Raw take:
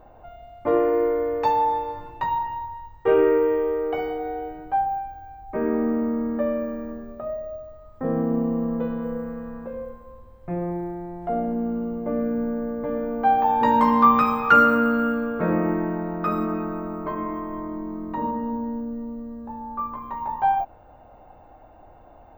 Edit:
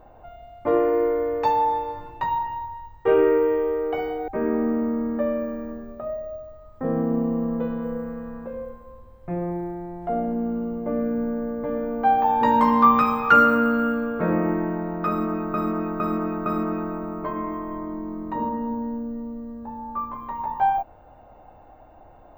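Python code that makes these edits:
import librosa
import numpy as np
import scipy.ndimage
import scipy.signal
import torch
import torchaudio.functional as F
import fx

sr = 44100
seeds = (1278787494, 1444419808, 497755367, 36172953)

y = fx.edit(x, sr, fx.cut(start_s=4.28, length_s=1.2),
    fx.repeat(start_s=16.28, length_s=0.46, count=4), tone=tone)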